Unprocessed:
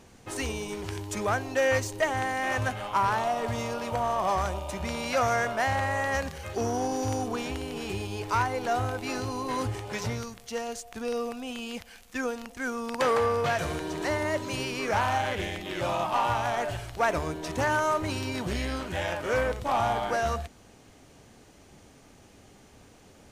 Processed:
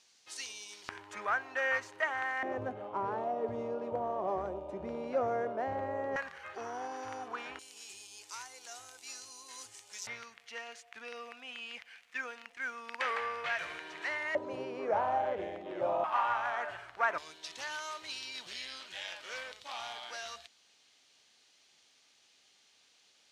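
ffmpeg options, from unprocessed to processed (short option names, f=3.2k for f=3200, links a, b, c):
-af "asetnsamples=n=441:p=0,asendcmd='0.89 bandpass f 1500;2.43 bandpass f 400;6.16 bandpass f 1500;7.59 bandpass f 7100;10.07 bandpass f 2100;14.35 bandpass f 580;16.04 bandpass f 1400;17.18 bandpass f 4000',bandpass=f=4.7k:t=q:w=1.7:csg=0"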